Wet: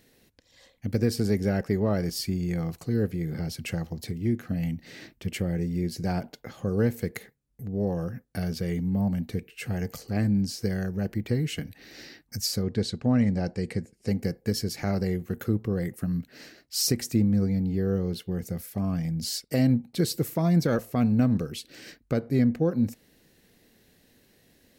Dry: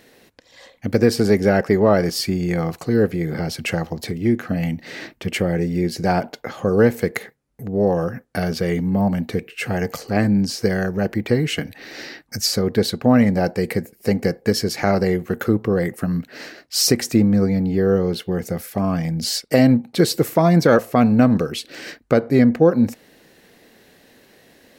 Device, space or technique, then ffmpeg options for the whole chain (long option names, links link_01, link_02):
smiley-face EQ: -filter_complex "[0:a]lowshelf=frequency=140:gain=8,equalizer=frequency=920:width_type=o:width=3:gain=-7,highshelf=frequency=9600:gain=3.5,asettb=1/sr,asplit=3[link_01][link_02][link_03];[link_01]atrim=end=12.634[link_04];[link_02]atrim=start=12.63:end=14.08,asetpts=PTS-STARTPTS,afade=type=in:duration=0.004:curve=qsin,afade=type=out:start_time=1.446:duration=0.004:curve=qsin,lowpass=frequency=8300:width=0.5412,lowpass=frequency=8300:width=1.3066[link_05];[link_03]atrim=start=14.076[link_06];[link_04][link_05]acrossfade=duration=0.004:curve1=hsin:curve2=qsin[link_07];[link_07][link_06]acrossfade=duration=0.004:curve1=qsin:curve2=hsin,volume=-8dB"